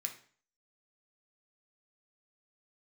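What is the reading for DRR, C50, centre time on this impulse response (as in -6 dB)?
3.0 dB, 10.5 dB, 12 ms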